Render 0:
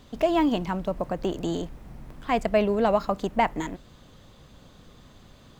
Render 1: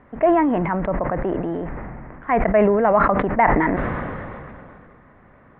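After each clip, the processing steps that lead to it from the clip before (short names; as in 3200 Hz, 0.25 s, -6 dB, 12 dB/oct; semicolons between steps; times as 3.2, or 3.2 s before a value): elliptic low-pass 2000 Hz, stop band 60 dB; tilt +2 dB/oct; sustainer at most 23 dB/s; gain +6 dB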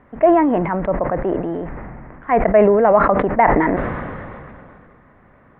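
dynamic EQ 500 Hz, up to +5 dB, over -26 dBFS, Q 0.88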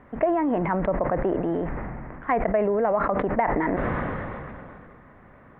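compressor 6:1, threshold -20 dBFS, peak gain reduction 11.5 dB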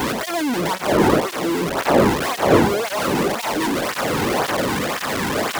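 infinite clipping; wind noise 620 Hz -25 dBFS; tape flanging out of phase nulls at 1.9 Hz, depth 1.8 ms; gain +6.5 dB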